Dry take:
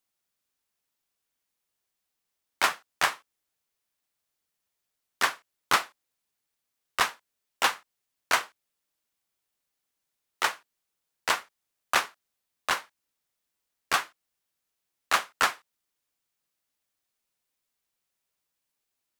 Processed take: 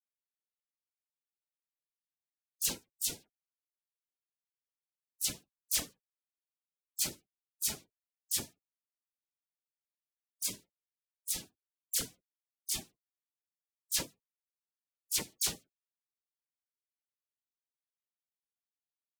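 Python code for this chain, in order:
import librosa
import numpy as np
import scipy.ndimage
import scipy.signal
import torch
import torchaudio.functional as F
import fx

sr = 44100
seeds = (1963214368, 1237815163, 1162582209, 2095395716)

y = fx.spec_gate(x, sr, threshold_db=-20, keep='weak')
y = (np.mod(10.0 ** (22.5 / 20.0) * y + 1.0, 2.0) - 1.0) / 10.0 ** (22.5 / 20.0)
y = fx.dispersion(y, sr, late='lows', ms=62.0, hz=2600.0)
y = y * librosa.db_to_amplitude(5.0)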